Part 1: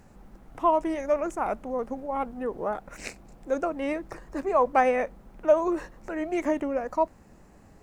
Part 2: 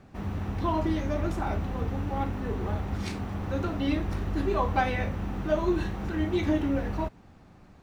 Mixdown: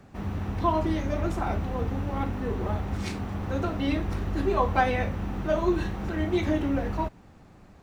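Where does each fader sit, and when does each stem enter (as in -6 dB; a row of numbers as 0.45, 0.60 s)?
-8.5, +1.0 dB; 0.00, 0.00 s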